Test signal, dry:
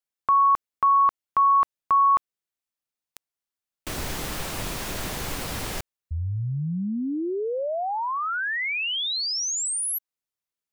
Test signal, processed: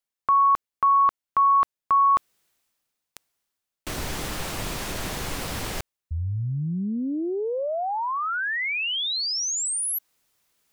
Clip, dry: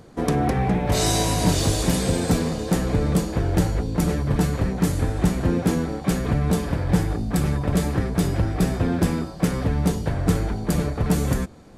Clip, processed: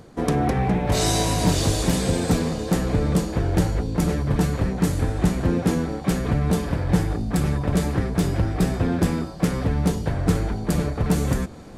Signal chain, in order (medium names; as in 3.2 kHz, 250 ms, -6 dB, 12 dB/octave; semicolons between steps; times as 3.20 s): reverse; upward compressor 1.5:1, threshold -25 dBFS; reverse; loudspeaker Doppler distortion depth 0.11 ms